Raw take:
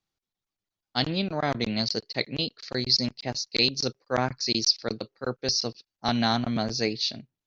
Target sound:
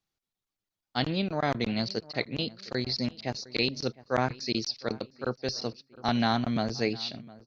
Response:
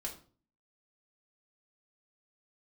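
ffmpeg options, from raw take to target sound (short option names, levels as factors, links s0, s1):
-filter_complex "[0:a]acrossover=split=3600[s0][s1];[s1]acompressor=threshold=0.01:ratio=4:attack=1:release=60[s2];[s0][s2]amix=inputs=2:normalize=0,asplit=2[s3][s4];[s4]adelay=709,lowpass=f=2200:p=1,volume=0.1,asplit=2[s5][s6];[s6]adelay=709,lowpass=f=2200:p=1,volume=0.42,asplit=2[s7][s8];[s8]adelay=709,lowpass=f=2200:p=1,volume=0.42[s9];[s3][s5][s7][s9]amix=inputs=4:normalize=0,volume=0.891"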